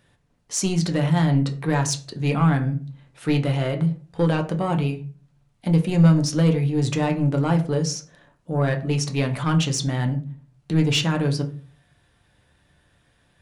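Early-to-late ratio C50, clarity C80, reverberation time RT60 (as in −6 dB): 14.0 dB, 18.0 dB, 0.40 s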